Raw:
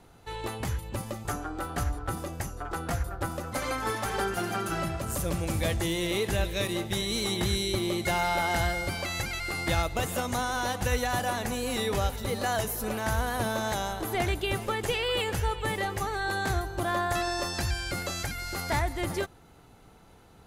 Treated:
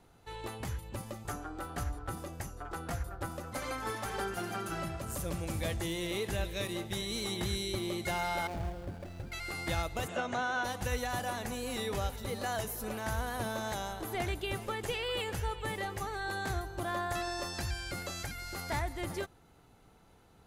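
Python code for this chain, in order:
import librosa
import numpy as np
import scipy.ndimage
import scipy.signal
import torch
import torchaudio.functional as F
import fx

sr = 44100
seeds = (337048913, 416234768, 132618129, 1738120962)

y = fx.median_filter(x, sr, points=41, at=(8.47, 9.32))
y = fx.cabinet(y, sr, low_hz=130.0, low_slope=12, high_hz=6200.0, hz=(370.0, 650.0, 1500.0, 2700.0, 5000.0), db=(4, 8, 7, 4, -9), at=(10.07, 10.63), fade=0.02)
y = y * 10.0 ** (-6.5 / 20.0)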